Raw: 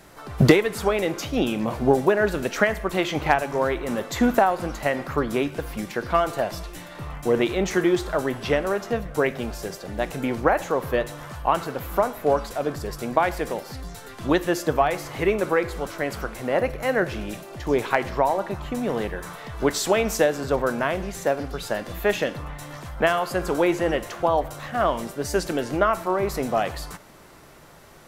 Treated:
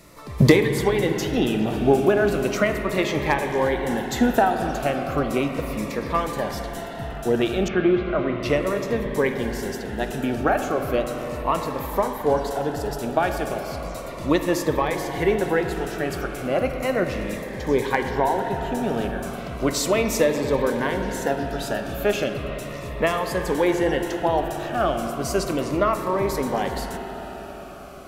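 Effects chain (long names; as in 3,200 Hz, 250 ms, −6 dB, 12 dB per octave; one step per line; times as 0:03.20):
0:07.68–0:08.43: low-pass filter 2,700 Hz 24 dB per octave
convolution reverb RT60 5.8 s, pre-delay 43 ms, DRR 5 dB
phaser whose notches keep moving one way falling 0.35 Hz
level +1.5 dB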